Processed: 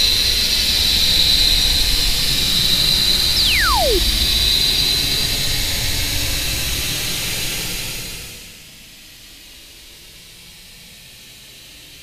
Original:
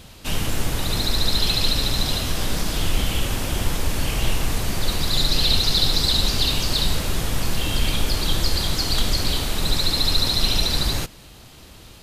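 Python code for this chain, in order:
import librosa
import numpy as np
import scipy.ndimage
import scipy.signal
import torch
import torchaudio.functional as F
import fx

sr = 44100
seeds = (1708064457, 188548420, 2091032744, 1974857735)

y = fx.high_shelf_res(x, sr, hz=1700.0, db=8.5, q=1.5)
y = fx.paulstretch(y, sr, seeds[0], factor=21.0, window_s=0.1, from_s=10.68)
y = fx.spec_paint(y, sr, seeds[1], shape='fall', start_s=3.36, length_s=0.63, low_hz=320.0, high_hz=5600.0, level_db=-17.0)
y = y * 10.0 ** (-1.0 / 20.0)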